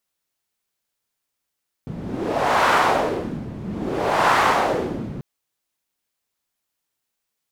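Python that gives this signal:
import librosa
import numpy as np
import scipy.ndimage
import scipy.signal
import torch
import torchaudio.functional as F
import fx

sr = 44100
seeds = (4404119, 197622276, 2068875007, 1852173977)

y = fx.wind(sr, seeds[0], length_s=3.34, low_hz=170.0, high_hz=1100.0, q=1.7, gusts=2, swing_db=14.5)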